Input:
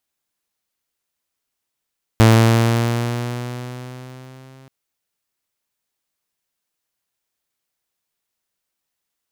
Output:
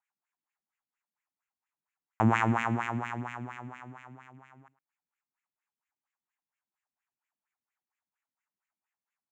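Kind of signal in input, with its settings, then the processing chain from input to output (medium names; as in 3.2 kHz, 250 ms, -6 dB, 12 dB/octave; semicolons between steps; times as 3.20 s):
gliding synth tone saw, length 2.48 s, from 112 Hz, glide +3 st, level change -36 dB, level -4.5 dB
FFT filter 170 Hz 0 dB, 520 Hz -14 dB, 820 Hz +4 dB, 2.6 kHz -1 dB, 4.8 kHz -19 dB, 7.2 kHz +9 dB, 11 kHz -30 dB, 16 kHz +9 dB; LFO band-pass sine 4.3 Hz 230–2400 Hz; delay 108 ms -18.5 dB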